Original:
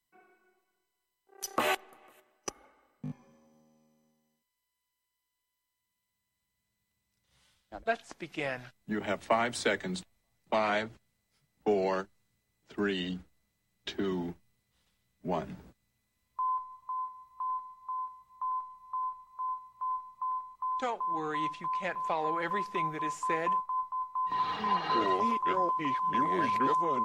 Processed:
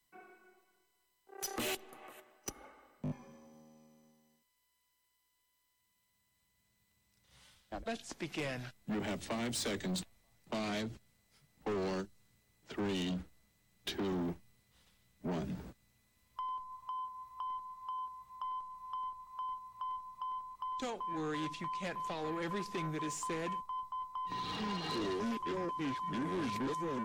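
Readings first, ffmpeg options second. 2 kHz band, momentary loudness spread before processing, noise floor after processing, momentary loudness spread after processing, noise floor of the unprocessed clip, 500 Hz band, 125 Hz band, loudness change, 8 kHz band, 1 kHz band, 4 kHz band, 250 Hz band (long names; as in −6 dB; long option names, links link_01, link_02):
−8.0 dB, 14 LU, −79 dBFS, 11 LU, −84 dBFS, −6.5 dB, +0.5 dB, −7.0 dB, +0.5 dB, −9.5 dB, −2.0 dB, −1.5 dB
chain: -filter_complex "[0:a]acrossover=split=400|3000[link_01][link_02][link_03];[link_02]acompressor=threshold=-44dB:ratio=10[link_04];[link_01][link_04][link_03]amix=inputs=3:normalize=0,asoftclip=type=tanh:threshold=-38.5dB,volume=5.5dB"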